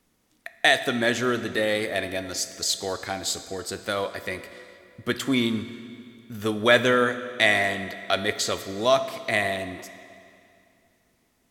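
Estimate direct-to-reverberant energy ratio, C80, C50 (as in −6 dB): 11.0 dB, 12.5 dB, 12.0 dB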